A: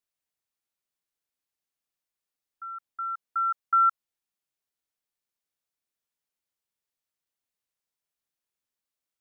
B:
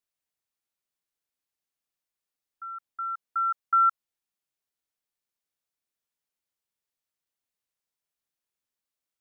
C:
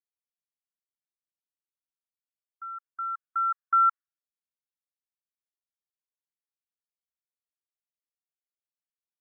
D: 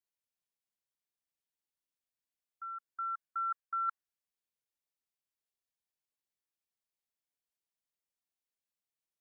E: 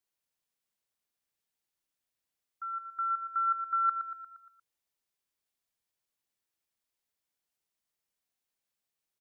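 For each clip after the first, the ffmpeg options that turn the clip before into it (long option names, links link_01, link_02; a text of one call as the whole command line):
ffmpeg -i in.wav -af anull out.wav
ffmpeg -i in.wav -af "afftdn=noise_reduction=21:noise_floor=-52" out.wav
ffmpeg -i in.wav -af "equalizer=frequency=1300:width_type=o:width=0.37:gain=-4.5,areverse,acompressor=threshold=-32dB:ratio=10,areverse" out.wav
ffmpeg -i in.wav -af "aecho=1:1:117|234|351|468|585|702:0.355|0.185|0.0959|0.0499|0.0259|0.0135,volume=4.5dB" out.wav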